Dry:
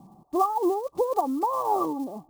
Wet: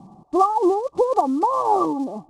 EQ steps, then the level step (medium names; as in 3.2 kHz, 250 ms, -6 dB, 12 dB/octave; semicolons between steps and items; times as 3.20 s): Bessel low-pass 6.8 kHz, order 8; +6.0 dB